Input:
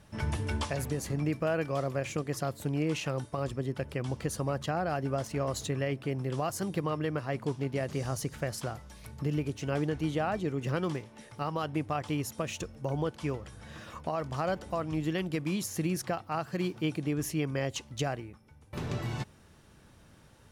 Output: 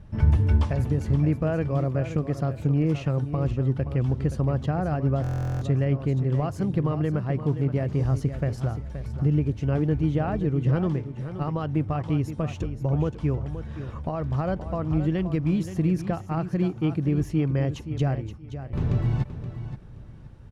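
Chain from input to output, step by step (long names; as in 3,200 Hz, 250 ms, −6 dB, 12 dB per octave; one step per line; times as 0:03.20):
RIAA equalisation playback
repeating echo 524 ms, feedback 22%, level −11 dB
buffer that repeats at 0:05.22, samples 1,024, times 16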